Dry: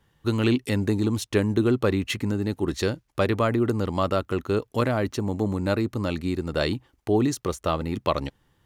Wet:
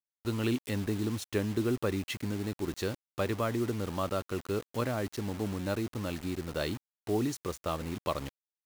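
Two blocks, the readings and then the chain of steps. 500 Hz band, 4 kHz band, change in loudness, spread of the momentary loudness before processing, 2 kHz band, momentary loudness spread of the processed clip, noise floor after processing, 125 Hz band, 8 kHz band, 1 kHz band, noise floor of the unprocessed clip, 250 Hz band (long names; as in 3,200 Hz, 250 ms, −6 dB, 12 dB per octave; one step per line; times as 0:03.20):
−8.5 dB, −7.5 dB, −8.5 dB, 5 LU, −8.0 dB, 5 LU, below −85 dBFS, −8.5 dB, −5.0 dB, −8.5 dB, −68 dBFS, −8.5 dB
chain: bit reduction 6 bits
level −8.5 dB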